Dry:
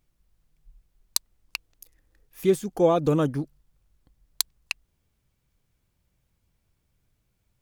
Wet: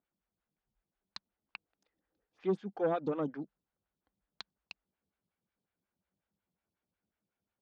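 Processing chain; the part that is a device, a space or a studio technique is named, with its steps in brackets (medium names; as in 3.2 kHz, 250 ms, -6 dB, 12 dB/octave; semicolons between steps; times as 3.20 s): vibe pedal into a guitar amplifier (lamp-driven phase shifter 5.5 Hz; valve stage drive 14 dB, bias 0.2; cabinet simulation 100–4400 Hz, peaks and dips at 130 Hz -10 dB, 200 Hz +7 dB, 790 Hz +3 dB, 1.5 kHz +5 dB); trim -8.5 dB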